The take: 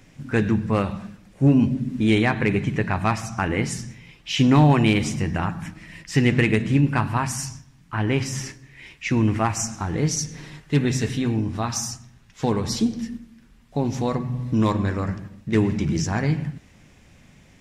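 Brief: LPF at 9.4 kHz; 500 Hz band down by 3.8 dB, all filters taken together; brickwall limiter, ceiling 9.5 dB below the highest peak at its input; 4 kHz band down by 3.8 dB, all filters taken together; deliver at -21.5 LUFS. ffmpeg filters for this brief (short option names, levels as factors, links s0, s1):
-af "lowpass=9400,equalizer=f=500:t=o:g=-5,equalizer=f=4000:t=o:g=-5.5,volume=2,alimiter=limit=0.266:level=0:latency=1"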